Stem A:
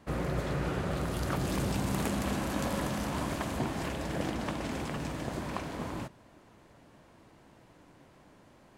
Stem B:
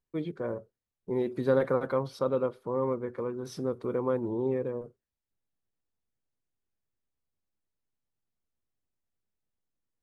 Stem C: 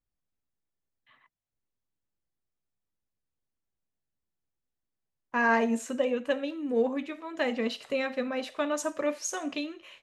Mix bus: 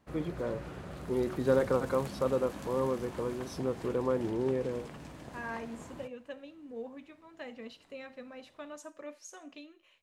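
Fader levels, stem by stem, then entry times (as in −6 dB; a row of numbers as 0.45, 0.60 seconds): −11.0, −1.5, −15.5 decibels; 0.00, 0.00, 0.00 seconds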